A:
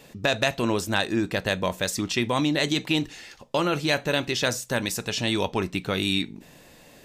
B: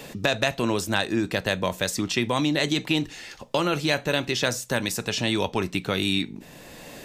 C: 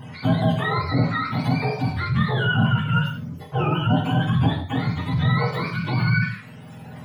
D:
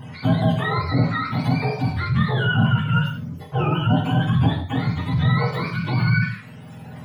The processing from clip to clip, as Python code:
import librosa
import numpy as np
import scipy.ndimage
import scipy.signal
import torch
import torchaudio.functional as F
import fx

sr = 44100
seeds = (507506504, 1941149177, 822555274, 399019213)

y1 = fx.band_squash(x, sr, depth_pct=40)
y2 = fx.octave_mirror(y1, sr, pivot_hz=660.0)
y2 = fx.rev_gated(y2, sr, seeds[0], gate_ms=200, shape='falling', drr_db=-0.5)
y2 = fx.transient(y2, sr, attack_db=-4, sustain_db=1)
y3 = fx.low_shelf(y2, sr, hz=140.0, db=3.0)